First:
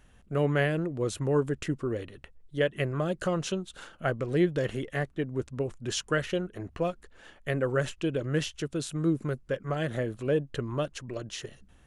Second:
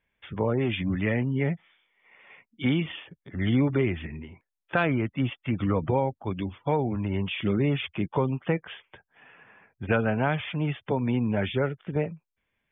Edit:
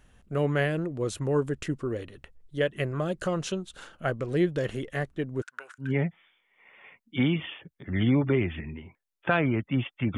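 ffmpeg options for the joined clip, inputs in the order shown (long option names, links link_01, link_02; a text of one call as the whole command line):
ffmpeg -i cue0.wav -i cue1.wav -filter_complex "[0:a]asettb=1/sr,asplit=3[link_01][link_02][link_03];[link_01]atrim=end=5.424[link_04];[link_02]atrim=start=5.42:end=5.92,asetpts=PTS-STARTPTS,afade=type=in:duration=0.004:curve=qsin,afade=type=out:start_time=0.496:duration=0.004:curve=qsin,highpass=frequency=1500:width_type=q:width=15[link_05];[link_03]atrim=start=5.916[link_06];[link_04][link_05]acrossfade=duration=0.004:curve1=hsin:curve2=qsin[link_07];[link_07][link_06]acrossfade=duration=0.004:curve1=qsin:curve2=hsin,apad=whole_dur=10.17,atrim=end=10.17,atrim=end=5.92,asetpts=PTS-STARTPTS[link_08];[1:a]atrim=start=1.24:end=5.63,asetpts=PTS-STARTPTS[link_09];[link_08][link_09]acrossfade=duration=0.14:curve1=tri:curve2=tri" out.wav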